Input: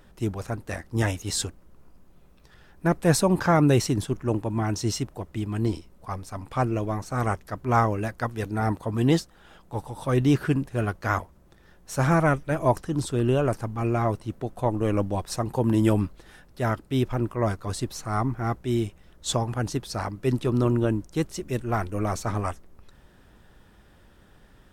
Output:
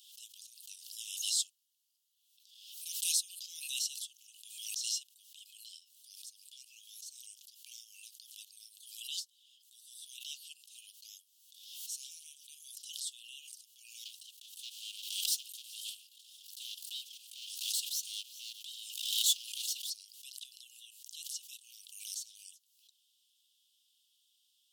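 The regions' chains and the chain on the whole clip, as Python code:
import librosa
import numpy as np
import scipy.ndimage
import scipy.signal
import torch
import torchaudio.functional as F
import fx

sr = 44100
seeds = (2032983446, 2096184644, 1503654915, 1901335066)

y = fx.chain(x, sr, fx.lower_of_two(delay_ms=3.2),
    fx.leveller(passes=2),
    fx.echo_single(ms=391, db=-23.0), at=(14.05, 19.9))
y = scipy.signal.sosfilt(scipy.signal.butter(16, 2900.0, 'highpass', fs=sr, output='sos'), y)
y = fx.pre_swell(y, sr, db_per_s=51.0)
y = F.gain(torch.from_numpy(y), -3.5).numpy()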